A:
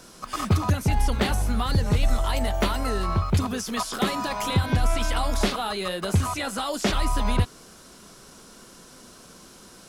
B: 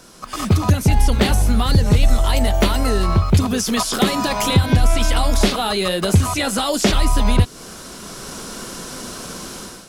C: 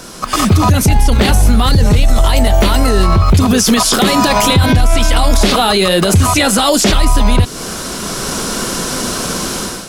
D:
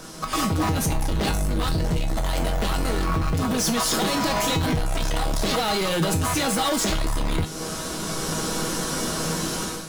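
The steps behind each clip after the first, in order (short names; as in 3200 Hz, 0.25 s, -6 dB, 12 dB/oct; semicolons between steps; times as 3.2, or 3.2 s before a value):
AGC gain up to 14 dB; dynamic EQ 1200 Hz, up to -5 dB, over -31 dBFS, Q 0.79; in parallel at +1.5 dB: compressor, threshold -20 dBFS, peak gain reduction 13.5 dB; on the sum: gain -4.5 dB
maximiser +14 dB; gain -1 dB
in parallel at -9 dB: sample-and-hold 16×; on the sum: overloaded stage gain 10.5 dB; resonator 160 Hz, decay 0.29 s, harmonics all, mix 80%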